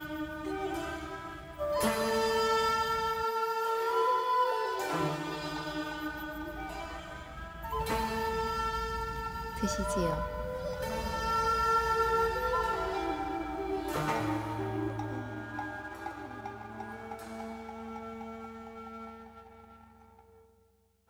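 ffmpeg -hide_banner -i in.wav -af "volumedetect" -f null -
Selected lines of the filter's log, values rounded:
mean_volume: -33.6 dB
max_volume: -16.4 dB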